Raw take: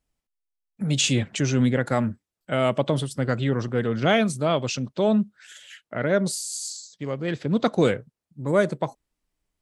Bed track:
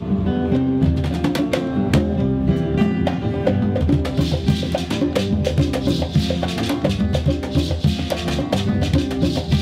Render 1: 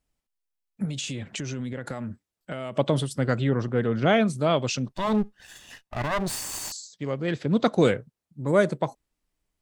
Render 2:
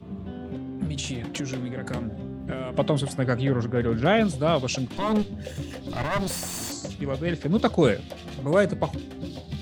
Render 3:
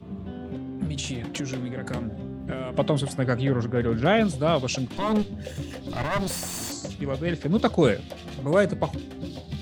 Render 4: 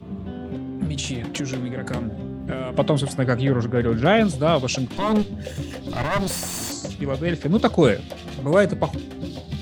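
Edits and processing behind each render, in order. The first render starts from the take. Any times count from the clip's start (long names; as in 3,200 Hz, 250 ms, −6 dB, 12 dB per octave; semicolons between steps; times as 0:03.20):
0:00.85–0:02.76: downward compressor 16 to 1, threshold −28 dBFS; 0:03.42–0:04.38: high-shelf EQ 3,300 Hz −8 dB; 0:04.88–0:06.72: lower of the sound and its delayed copy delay 1.1 ms
mix in bed track −16.5 dB
no processing that can be heard
level +3.5 dB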